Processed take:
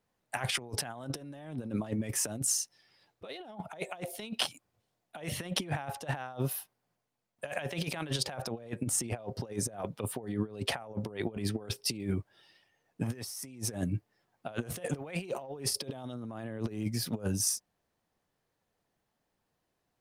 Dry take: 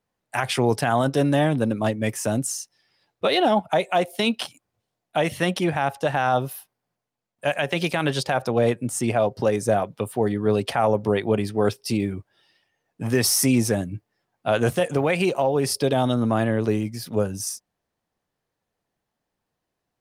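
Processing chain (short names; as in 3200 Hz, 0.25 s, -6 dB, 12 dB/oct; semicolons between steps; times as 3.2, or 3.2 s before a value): negative-ratio compressor -28 dBFS, ratio -0.5; gain -6.5 dB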